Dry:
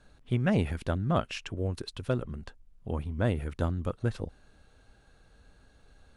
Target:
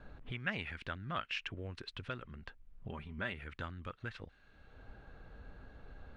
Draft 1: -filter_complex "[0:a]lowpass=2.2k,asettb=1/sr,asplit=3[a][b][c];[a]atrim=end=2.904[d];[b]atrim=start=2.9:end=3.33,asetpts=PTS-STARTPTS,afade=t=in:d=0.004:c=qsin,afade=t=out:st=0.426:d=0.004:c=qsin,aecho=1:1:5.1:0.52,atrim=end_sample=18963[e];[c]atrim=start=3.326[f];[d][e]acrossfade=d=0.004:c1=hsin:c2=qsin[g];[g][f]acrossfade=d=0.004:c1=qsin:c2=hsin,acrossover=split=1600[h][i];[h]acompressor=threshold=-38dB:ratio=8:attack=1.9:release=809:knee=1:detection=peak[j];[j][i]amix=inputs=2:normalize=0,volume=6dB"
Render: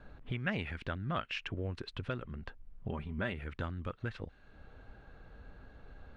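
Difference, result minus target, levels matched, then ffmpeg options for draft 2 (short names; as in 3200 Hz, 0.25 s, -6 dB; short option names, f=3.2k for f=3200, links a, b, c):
compressor: peak gain reduction -6.5 dB
-filter_complex "[0:a]lowpass=2.2k,asettb=1/sr,asplit=3[a][b][c];[a]atrim=end=2.904[d];[b]atrim=start=2.9:end=3.33,asetpts=PTS-STARTPTS,afade=t=in:d=0.004:c=qsin,afade=t=out:st=0.426:d=0.004:c=qsin,aecho=1:1:5.1:0.52,atrim=end_sample=18963[e];[c]atrim=start=3.326[f];[d][e]acrossfade=d=0.004:c1=hsin:c2=qsin[g];[g][f]acrossfade=d=0.004:c1=qsin:c2=hsin,acrossover=split=1600[h][i];[h]acompressor=threshold=-45.5dB:ratio=8:attack=1.9:release=809:knee=1:detection=peak[j];[j][i]amix=inputs=2:normalize=0,volume=6dB"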